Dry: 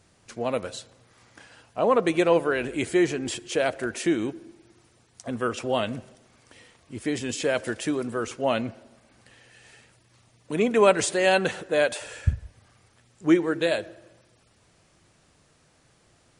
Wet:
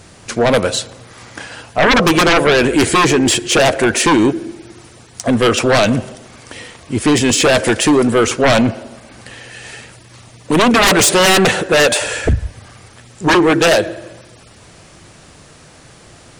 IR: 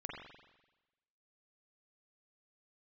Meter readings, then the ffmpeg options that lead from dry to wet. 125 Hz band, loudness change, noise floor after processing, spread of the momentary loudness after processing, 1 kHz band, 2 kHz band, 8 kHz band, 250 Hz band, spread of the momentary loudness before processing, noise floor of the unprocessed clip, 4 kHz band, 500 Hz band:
+14.0 dB, +12.5 dB, −43 dBFS, 16 LU, +14.0 dB, +15.0 dB, +18.0 dB, +12.5 dB, 15 LU, −62 dBFS, +18.0 dB, +10.0 dB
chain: -af "aeval=exprs='0.531*sin(PI/2*7.08*val(0)/0.531)':channel_layout=same,volume=-1.5dB"

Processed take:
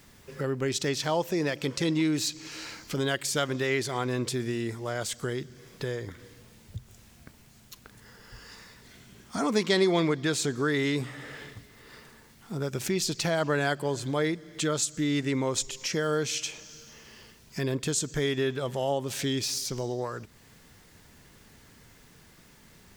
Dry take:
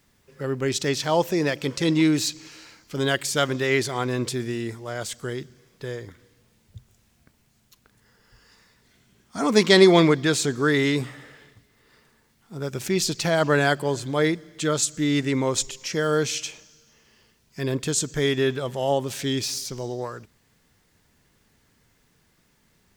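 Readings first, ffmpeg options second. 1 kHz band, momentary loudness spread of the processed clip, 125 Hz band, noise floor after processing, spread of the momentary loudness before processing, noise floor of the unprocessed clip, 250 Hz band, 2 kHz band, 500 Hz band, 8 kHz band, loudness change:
−5.5 dB, 17 LU, −4.5 dB, −56 dBFS, 14 LU, −64 dBFS, −5.5 dB, −6.0 dB, −6.0 dB, −3.5 dB, −6.0 dB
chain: -af "acompressor=threshold=-45dB:ratio=2,volume=8.5dB"

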